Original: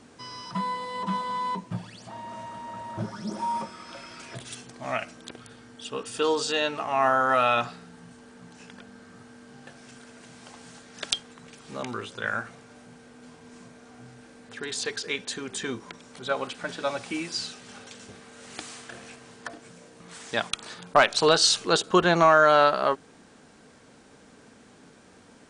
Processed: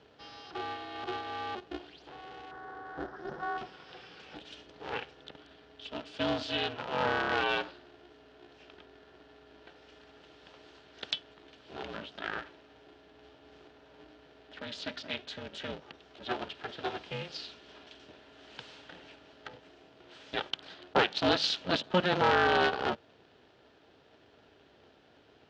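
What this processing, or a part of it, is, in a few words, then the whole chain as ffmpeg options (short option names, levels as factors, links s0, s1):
ring modulator pedal into a guitar cabinet: -filter_complex "[0:a]aeval=exprs='val(0)*sgn(sin(2*PI*180*n/s))':c=same,highpass=110,equalizer=f=1100:t=q:w=4:g=-7,equalizer=f=2100:t=q:w=4:g=-5,equalizer=f=3100:t=q:w=4:g=4,lowpass=f=4300:w=0.5412,lowpass=f=4300:w=1.3066,asettb=1/sr,asplit=3[s0][s1][s2];[s0]atrim=end=2.514[s3];[s1]atrim=start=2.51:end=3.58,asetpts=PTS-STARTPTS,afade=t=in:d=0.004:c=qsin,afade=t=out:st=1.066:d=0.004:c=qsin,highshelf=f=2000:t=q:w=3:g=-7.5[s4];[s2]atrim=start=3.576[s5];[s3][s4]acrossfade=d=0.004:c1=hsin:c2=qsin[s6];[s6][s5]acrossfade=d=0.004:c1=qsin:c2=hsin,volume=0.501"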